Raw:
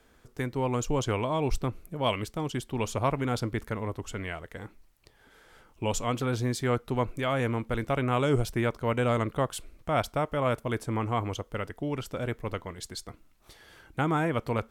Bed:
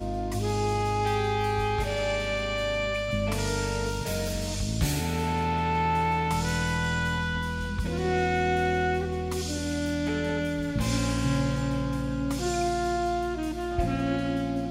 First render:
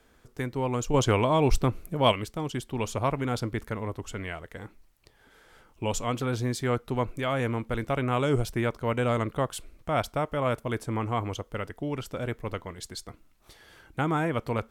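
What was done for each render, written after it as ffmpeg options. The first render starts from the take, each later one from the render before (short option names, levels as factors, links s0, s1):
-filter_complex "[0:a]asplit=3[s0][s1][s2];[s0]atrim=end=0.942[s3];[s1]atrim=start=0.938:end=2.122,asetpts=PTS-STARTPTS,volume=1.88[s4];[s2]atrim=start=2.118[s5];[s3][s4]acrossfade=d=0.004:c1=hsin:c2=hsin[s6];[s6][s5]acrossfade=d=0.004:c1=hsin:c2=hsin"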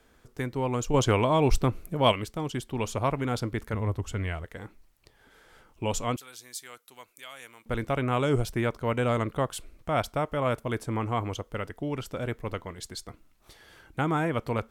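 -filter_complex "[0:a]asettb=1/sr,asplit=3[s0][s1][s2];[s0]atrim=end=3.734[s3];[s1]atrim=start=3.73:end=4.45,asetpts=PTS-STARTPTS,afade=t=in:d=0.004:c=qsin,afade=t=out:st=0.716:d=0.004:c=qsin,equalizer=f=79:w=0.83:g=10[s4];[s2]atrim=start=4.446[s5];[s3][s4]acrossfade=d=0.004:c1=hsin:c2=qsin[s6];[s6][s5]acrossfade=d=0.004:c1=qsin:c2=hsin,asettb=1/sr,asplit=3[s7][s8][s9];[s7]atrim=end=6.164[s10];[s8]atrim=start=6.16:end=7.66,asetpts=PTS-STARTPTS,afade=t=in:d=0.004:c=qsin,afade=t=out:st=1.496:d=0.004:c=qsin,aderivative[s11];[s9]atrim=start=7.656[s12];[s10][s11]acrossfade=d=0.004:c1=hsin:c2=qsin[s13];[s13][s12]acrossfade=d=0.004:c1=qsin:c2=hsin"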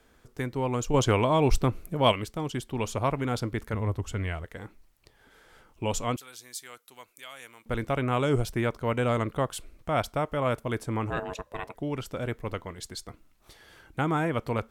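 -filter_complex "[0:a]asettb=1/sr,asplit=3[s0][s1][s2];[s0]atrim=end=11.104[s3];[s1]atrim=start=11.1:end=11.75,asetpts=PTS-STARTPTS,afade=t=in:d=0.004:c=qsin,afade=t=out:st=0.646:d=0.004:c=qsin,aeval=exprs='val(0)*sin(2*PI*550*n/s)':c=same[s4];[s2]atrim=start=11.746[s5];[s3][s4]acrossfade=d=0.004:c1=hsin:c2=qsin[s6];[s6][s5]acrossfade=d=0.004:c1=qsin:c2=hsin"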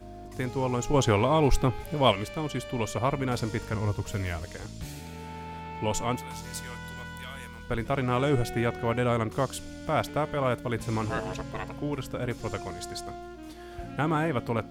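-filter_complex "[1:a]volume=0.224[s0];[0:a][s0]amix=inputs=2:normalize=0"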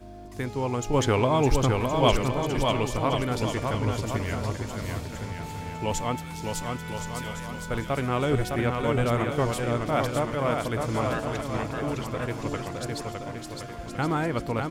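-af "aecho=1:1:610|1068|1411|1668|1861:0.631|0.398|0.251|0.158|0.1"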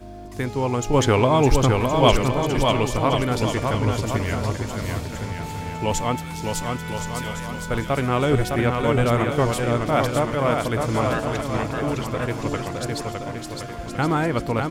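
-af "volume=1.78"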